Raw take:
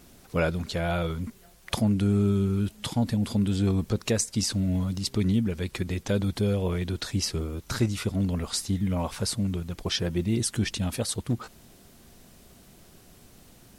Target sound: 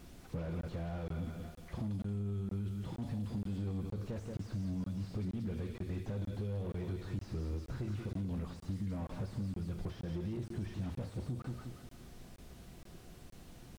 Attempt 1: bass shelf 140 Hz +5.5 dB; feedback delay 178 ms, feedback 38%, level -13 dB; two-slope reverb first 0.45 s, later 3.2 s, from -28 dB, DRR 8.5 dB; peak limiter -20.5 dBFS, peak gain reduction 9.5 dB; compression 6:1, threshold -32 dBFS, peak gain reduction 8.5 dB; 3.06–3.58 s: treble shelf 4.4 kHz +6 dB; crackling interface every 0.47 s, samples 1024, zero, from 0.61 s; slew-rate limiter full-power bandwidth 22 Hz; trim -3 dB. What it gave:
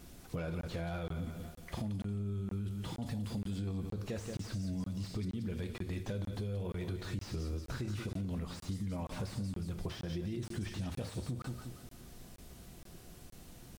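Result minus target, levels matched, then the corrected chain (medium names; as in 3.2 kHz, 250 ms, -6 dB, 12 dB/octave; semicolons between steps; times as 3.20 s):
slew-rate limiter: distortion -4 dB
bass shelf 140 Hz +5.5 dB; feedback delay 178 ms, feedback 38%, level -13 dB; two-slope reverb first 0.45 s, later 3.2 s, from -28 dB, DRR 8.5 dB; peak limiter -20.5 dBFS, peak gain reduction 9.5 dB; compression 6:1, threshold -32 dBFS, peak gain reduction 8.5 dB; 3.06–3.58 s: treble shelf 4.4 kHz +6 dB; crackling interface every 0.47 s, samples 1024, zero, from 0.61 s; slew-rate limiter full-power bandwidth 6.5 Hz; trim -3 dB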